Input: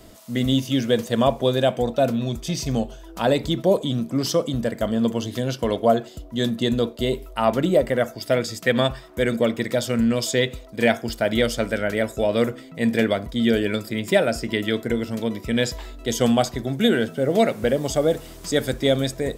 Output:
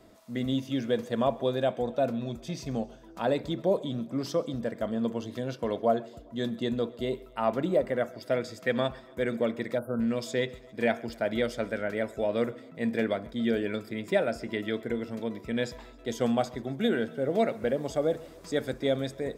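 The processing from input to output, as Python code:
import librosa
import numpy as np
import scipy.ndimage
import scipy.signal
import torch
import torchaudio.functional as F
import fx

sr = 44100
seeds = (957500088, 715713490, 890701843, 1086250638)

y = fx.low_shelf(x, sr, hz=99.0, db=-11.0)
y = fx.echo_feedback(y, sr, ms=134, feedback_pct=56, wet_db=-23)
y = fx.spec_erase(y, sr, start_s=9.78, length_s=0.22, low_hz=1600.0, high_hz=9400.0)
y = fx.high_shelf(y, sr, hz=3900.0, db=-11.5)
y = fx.notch(y, sr, hz=3000.0, q=15.0)
y = F.gain(torch.from_numpy(y), -6.5).numpy()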